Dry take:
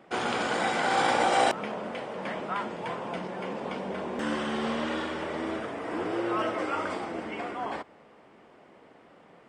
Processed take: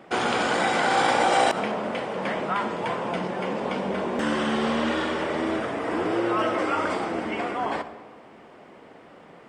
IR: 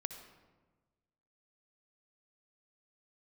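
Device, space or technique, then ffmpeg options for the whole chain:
ducked reverb: -filter_complex "[0:a]asplit=3[link_01][link_02][link_03];[1:a]atrim=start_sample=2205[link_04];[link_02][link_04]afir=irnorm=-1:irlink=0[link_05];[link_03]apad=whole_len=418219[link_06];[link_05][link_06]sidechaincompress=threshold=-29dB:ratio=8:attack=16:release=119,volume=3dB[link_07];[link_01][link_07]amix=inputs=2:normalize=0"

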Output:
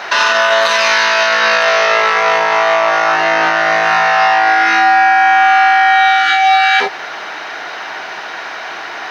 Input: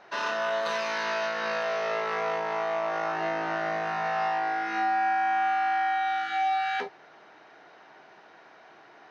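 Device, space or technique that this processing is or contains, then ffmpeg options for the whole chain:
mastering chain: -af "equalizer=frequency=210:width_type=o:width=1.4:gain=2.5,acompressor=threshold=-32dB:ratio=2.5,tiltshelf=frequency=660:gain=-9,alimiter=level_in=25.5dB:limit=-1dB:release=50:level=0:latency=1,volume=-2dB"

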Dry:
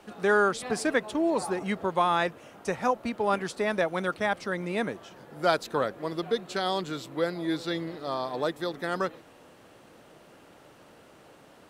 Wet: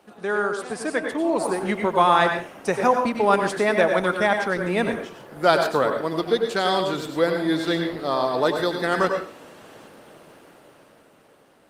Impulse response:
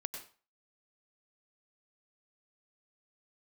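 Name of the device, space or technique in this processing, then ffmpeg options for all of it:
far-field microphone of a smart speaker: -filter_complex "[1:a]atrim=start_sample=2205[link_01];[0:a][link_01]afir=irnorm=-1:irlink=0,highpass=frequency=130:poles=1,dynaudnorm=framelen=210:gausssize=13:maxgain=10dB" -ar 48000 -c:a libopus -b:a 32k

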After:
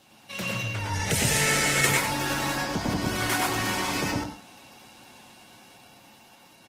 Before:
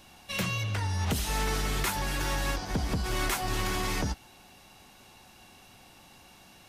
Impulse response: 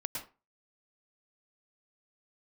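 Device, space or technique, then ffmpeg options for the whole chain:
far-field microphone of a smart speaker: -filter_complex "[0:a]asettb=1/sr,asplit=3[link_01][link_02][link_03];[link_01]atrim=end=0.944[link_04];[link_02]atrim=start=0.94:end=1.86,asetpts=PTS-STARTPTS,afade=type=in:duration=0.004:curve=qsin,afade=type=out:start_time=0.916:duration=0.004:curve=qsin,equalizer=frequency=125:width_type=o:width=1:gain=9,equalizer=frequency=250:width_type=o:width=1:gain=-4,equalizer=frequency=500:width_type=o:width=1:gain=9,equalizer=frequency=1000:width_type=o:width=1:gain=-7,equalizer=frequency=2000:width_type=o:width=1:gain=11,equalizer=frequency=8000:width_type=o:width=1:gain=11[link_05];[link_03]atrim=start=1.856[link_06];[link_04][link_05]acrossfade=duration=0.004:curve1=hsin:curve2=qsin[link_07];[link_07][link_06]acrossfade=duration=0.004:curve1=qsin:curve2=hsin,aecho=1:1:96:0.422[link_08];[1:a]atrim=start_sample=2205[link_09];[link_08][link_09]afir=irnorm=-1:irlink=0,highpass=130,dynaudnorm=framelen=220:gausssize=13:maxgain=3.5dB" -ar 48000 -c:a libopus -b:a 16k

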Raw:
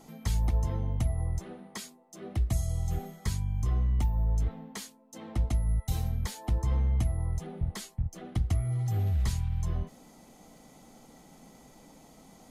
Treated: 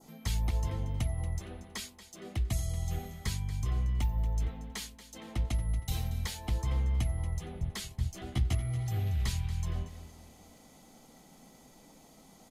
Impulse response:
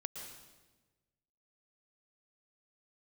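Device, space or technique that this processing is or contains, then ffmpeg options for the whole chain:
presence and air boost: -filter_complex "[0:a]adynamicequalizer=threshold=0.00112:dfrequency=2600:dqfactor=0.95:tfrequency=2600:tqfactor=0.95:attack=5:release=100:ratio=0.375:range=3:mode=boostabove:tftype=bell,asettb=1/sr,asplit=3[link_01][link_02][link_03];[link_01]atrim=end=7.894[link_04];[link_02]atrim=start=7.89:end=8.55,asetpts=PTS-STARTPTS,afade=type=in:duration=0.004:curve=qsin,afade=type=out:start_time=0.656:duration=0.004:curve=qsin,asplit=2[link_05][link_06];[link_06]adelay=15,volume=-2dB[link_07];[link_05][link_07]amix=inputs=2:normalize=0,atrim=end_sample=29106[link_08];[link_03]atrim=start=8.546[link_09];[link_04][link_08]acrossfade=duration=0.004:curve1=hsin:curve2=qsin[link_10];[link_10][link_09]acrossfade=duration=0.004:curve1=qsin:curve2=hsin,equalizer=frequency=3900:width_type=o:width=1.5:gain=3,highshelf=frequency=11000:gain=6,aecho=1:1:232|464|696|928:0.2|0.0758|0.0288|0.0109,volume=-3.5dB"

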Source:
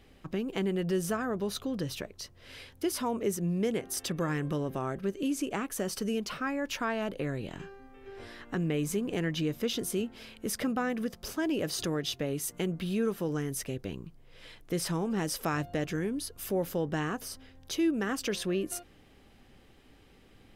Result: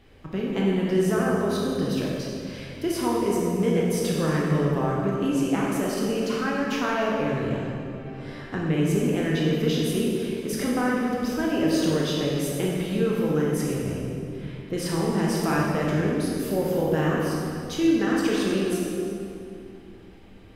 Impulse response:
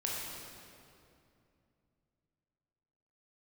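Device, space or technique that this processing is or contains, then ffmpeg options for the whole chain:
swimming-pool hall: -filter_complex "[0:a]asettb=1/sr,asplit=3[link_01][link_02][link_03];[link_01]atrim=end=13.834[link_04];[link_02]atrim=start=13.83:end=14.73,asetpts=PTS-STARTPTS,afade=type=in:duration=0.004:curve=qsin,afade=type=out:start_time=0.896:duration=0.004:curve=qsin,acrossover=split=2700[link_05][link_06];[link_06]acompressor=threshold=-60dB:ratio=4:attack=1:release=60[link_07];[link_05][link_07]amix=inputs=2:normalize=0[link_08];[link_03]atrim=start=14.726[link_09];[link_04][link_08]acrossfade=duration=0.004:curve1=hsin:curve2=qsin[link_10];[link_10][link_09]acrossfade=duration=0.004:curve1=qsin:curve2=hsin[link_11];[1:a]atrim=start_sample=2205[link_12];[link_11][link_12]afir=irnorm=-1:irlink=0,highshelf=frequency=4000:gain=-6.5,volume=4dB"

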